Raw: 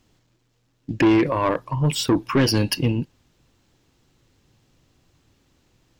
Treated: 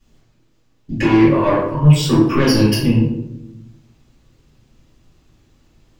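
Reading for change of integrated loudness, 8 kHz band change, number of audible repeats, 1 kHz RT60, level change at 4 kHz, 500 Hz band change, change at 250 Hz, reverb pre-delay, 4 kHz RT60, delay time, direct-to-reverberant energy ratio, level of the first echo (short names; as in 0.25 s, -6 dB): +6.0 dB, +2.0 dB, none, 0.70 s, +3.0 dB, +5.5 dB, +7.0 dB, 3 ms, 0.45 s, none, -13.5 dB, none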